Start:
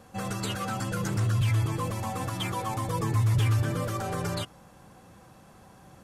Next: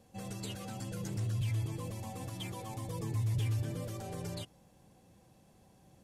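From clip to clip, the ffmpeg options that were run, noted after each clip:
-af "equalizer=f=1300:w=1.5:g=-12.5,volume=0.376"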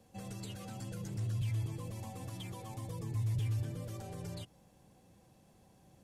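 -filter_complex "[0:a]acrossover=split=170[s0][s1];[s1]acompressor=threshold=0.00631:ratio=6[s2];[s0][s2]amix=inputs=2:normalize=0,volume=0.891"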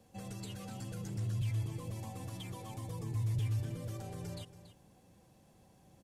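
-af "aecho=1:1:281:0.211"

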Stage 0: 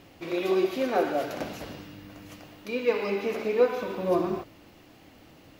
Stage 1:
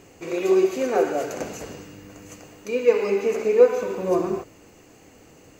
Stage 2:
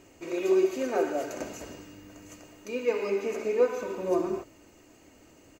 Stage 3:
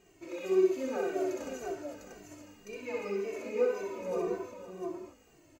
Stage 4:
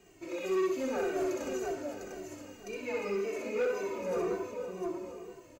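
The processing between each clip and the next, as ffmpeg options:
-af "superequalizer=7b=2:13b=0.501:15b=3.55,volume=1.19"
-af "aecho=1:1:3.2:0.38,volume=0.501"
-filter_complex "[0:a]asplit=2[s0][s1];[s1]aecho=0:1:64|520|701:0.708|0.211|0.562[s2];[s0][s2]amix=inputs=2:normalize=0,asplit=2[s3][s4];[s4]adelay=2.1,afreqshift=-1.9[s5];[s3][s5]amix=inputs=2:normalize=1,volume=0.562"
-filter_complex "[0:a]aecho=1:1:974:0.158,acrossover=split=120|1400|2500[s0][s1][s2][s3];[s1]asoftclip=type=tanh:threshold=0.0335[s4];[s0][s4][s2][s3]amix=inputs=4:normalize=0,volume=1.41"

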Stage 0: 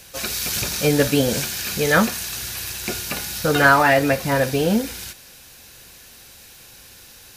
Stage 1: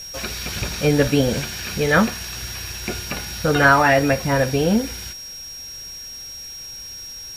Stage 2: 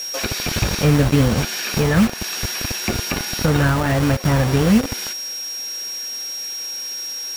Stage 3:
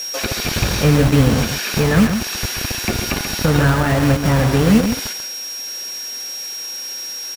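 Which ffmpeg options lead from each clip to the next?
-filter_complex "[0:a]acrossover=split=4000[s0][s1];[s1]acompressor=threshold=0.0158:ratio=4:attack=1:release=60[s2];[s0][s2]amix=inputs=2:normalize=0,aeval=exprs='val(0)+0.0224*sin(2*PI*5600*n/s)':c=same,lowshelf=f=74:g=11"
-filter_complex "[0:a]acrossover=split=240[s0][s1];[s0]acrusher=bits=4:mix=0:aa=0.000001[s2];[s1]acompressor=threshold=0.0398:ratio=10[s3];[s2][s3]amix=inputs=2:normalize=0,volume=2.24"
-af "aecho=1:1:134:0.422,volume=1.19"

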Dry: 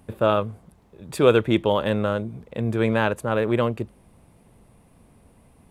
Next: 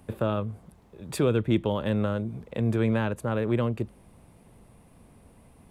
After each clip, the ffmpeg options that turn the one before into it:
-filter_complex "[0:a]acrossover=split=280[s0][s1];[s1]acompressor=threshold=0.0316:ratio=3[s2];[s0][s2]amix=inputs=2:normalize=0"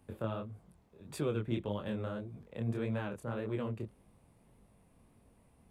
-af "flanger=delay=19:depth=8:speed=1.7,volume=0.422"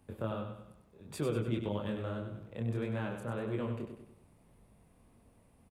-af "aecho=1:1:97|194|291|388|485:0.447|0.205|0.0945|0.0435|0.02"

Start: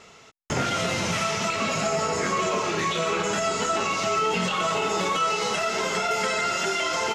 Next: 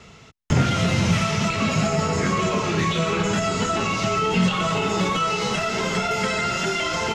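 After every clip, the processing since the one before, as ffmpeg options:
-filter_complex "[0:a]bass=f=250:g=14,treble=f=4000:g=-2,acrossover=split=190|740|4300[s0][s1][s2][s3];[s2]crystalizer=i=2:c=0[s4];[s0][s1][s4][s3]amix=inputs=4:normalize=0"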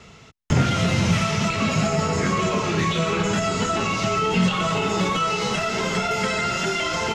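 -af anull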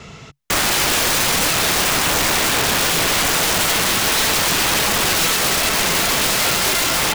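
-af "equalizer=f=140:w=6.3:g=5,aeval=exprs='(mod(10.6*val(0)+1,2)-1)/10.6':c=same,volume=2.51"

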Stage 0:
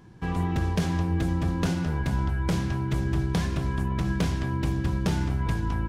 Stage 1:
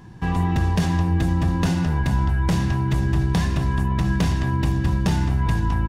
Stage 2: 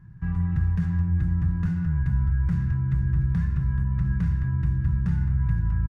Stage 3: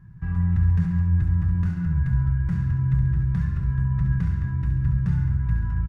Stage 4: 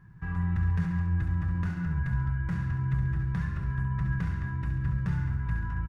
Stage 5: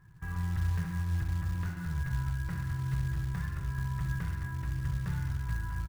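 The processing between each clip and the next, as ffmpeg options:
-filter_complex "[0:a]aecho=1:1:1.1:0.3,asplit=2[s0][s1];[s1]alimiter=limit=0.075:level=0:latency=1,volume=1.12[s2];[s0][s2]amix=inputs=2:normalize=0"
-af "firequalizer=gain_entry='entry(160,0);entry(240,-16);entry(660,-25);entry(1400,-6);entry(3100,-25)':delay=0.05:min_phase=1,volume=0.794"
-af "flanger=delay=1.7:depth=1.9:regen=-75:speed=1:shape=sinusoidal,aecho=1:1:68|136|204|272|340|408|476:0.376|0.214|0.122|0.0696|0.0397|0.0226|0.0129,volume=1.68"
-af "bass=f=250:g=-10,treble=f=4000:g=-3,volume=1.33"
-af "acrusher=bits=6:mode=log:mix=0:aa=0.000001,equalizer=f=210:t=o:w=0.59:g=-8,volume=0.708"

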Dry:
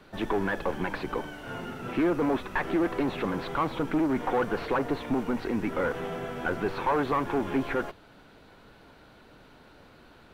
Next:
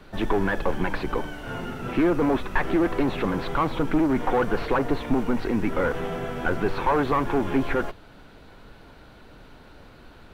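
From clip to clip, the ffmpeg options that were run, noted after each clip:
-af "lowshelf=f=72:g=11,volume=1.5"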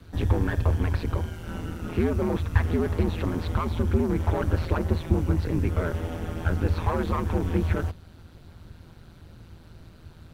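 -af "bass=f=250:g=10,treble=f=4000:g=9,aeval=exprs='val(0)*sin(2*PI*82*n/s)':c=same,volume=0.596"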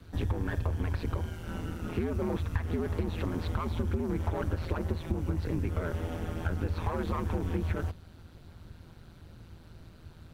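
-af "acompressor=threshold=0.0708:ratio=6,volume=0.708"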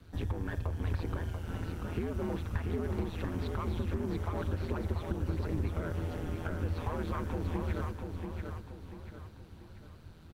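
-af "aecho=1:1:688|1376|2064|2752|3440:0.562|0.236|0.0992|0.0417|0.0175,volume=0.631"

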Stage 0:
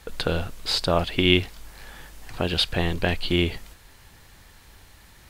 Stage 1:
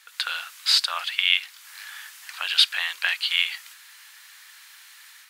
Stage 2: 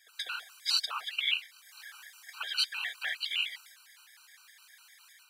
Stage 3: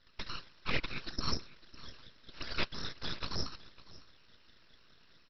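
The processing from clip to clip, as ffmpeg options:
-af "dynaudnorm=f=130:g=3:m=2.24,highpass=f=1300:w=0.5412,highpass=f=1300:w=1.3066"
-af "afftfilt=real='hypot(re,im)*cos(2*PI*random(0))':imag='hypot(re,im)*sin(2*PI*random(1))':win_size=512:overlap=0.75,afftfilt=real='re*gt(sin(2*PI*4.9*pts/sr)*(1-2*mod(floor(b*sr/1024/780),2)),0)':imag='im*gt(sin(2*PI*4.9*pts/sr)*(1-2*mod(floor(b*sr/1024/780),2)),0)':win_size=1024:overlap=0.75"
-af "aresample=11025,aeval=exprs='abs(val(0))':c=same,aresample=44100,aecho=1:1:554:0.112,volume=0.891"

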